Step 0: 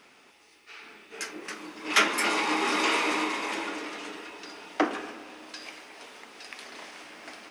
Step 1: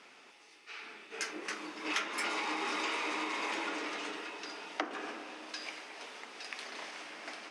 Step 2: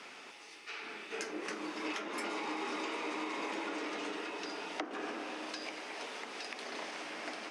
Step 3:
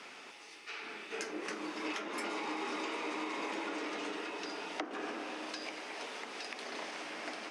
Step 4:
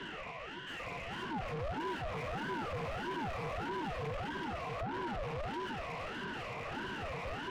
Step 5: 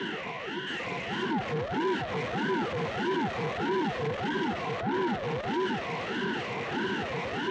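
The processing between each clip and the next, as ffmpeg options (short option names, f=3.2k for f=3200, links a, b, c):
-af "lowpass=8.2k,acompressor=threshold=-31dB:ratio=12,highpass=f=300:p=1"
-filter_complex "[0:a]acrossover=split=380|770[a][b][c];[a]acompressor=threshold=-50dB:ratio=4[d];[b]acompressor=threshold=-51dB:ratio=4[e];[c]acompressor=threshold=-49dB:ratio=4[f];[d][e][f]amix=inputs=3:normalize=0,volume=6.5dB"
-af anull
-filter_complex "[0:a]asplit=3[a][b][c];[a]bandpass=f=300:t=q:w=8,volume=0dB[d];[b]bandpass=f=870:t=q:w=8,volume=-6dB[e];[c]bandpass=f=2.24k:t=q:w=8,volume=-9dB[f];[d][e][f]amix=inputs=3:normalize=0,asplit=2[g][h];[h]highpass=f=720:p=1,volume=34dB,asoftclip=type=tanh:threshold=-34dB[i];[g][i]amix=inputs=2:normalize=0,lowpass=f=1.2k:p=1,volume=-6dB,aeval=exprs='val(0)*sin(2*PI*420*n/s+420*0.65/1.6*sin(2*PI*1.6*n/s))':c=same,volume=6dB"
-filter_complex "[0:a]asplit=2[a][b];[b]aeval=exprs='0.0355*sin(PI/2*2*val(0)/0.0355)':c=same,volume=-7dB[c];[a][c]amix=inputs=2:normalize=0,highpass=150,equalizer=f=210:t=q:w=4:g=4,equalizer=f=380:t=q:w=4:g=4,equalizer=f=610:t=q:w=4:g=-8,equalizer=f=1.2k:t=q:w=4:g=-8,equalizer=f=2.5k:t=q:w=4:g=-5,equalizer=f=4.9k:t=q:w=4:g=-5,lowpass=f=6.9k:w=0.5412,lowpass=f=6.9k:w=1.3066,volume=4.5dB"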